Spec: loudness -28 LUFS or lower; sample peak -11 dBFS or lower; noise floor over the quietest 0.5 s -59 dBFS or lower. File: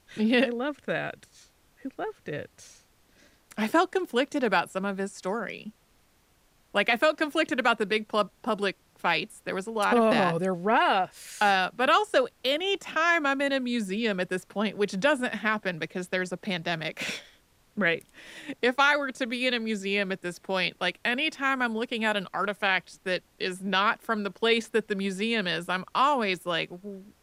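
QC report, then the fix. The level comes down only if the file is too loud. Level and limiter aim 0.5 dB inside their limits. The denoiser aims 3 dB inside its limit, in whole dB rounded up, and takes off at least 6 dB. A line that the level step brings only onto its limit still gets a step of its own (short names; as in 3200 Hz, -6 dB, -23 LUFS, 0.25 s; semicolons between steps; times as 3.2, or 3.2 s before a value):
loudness -27.0 LUFS: fail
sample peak -10.0 dBFS: fail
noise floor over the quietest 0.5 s -64 dBFS: OK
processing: gain -1.5 dB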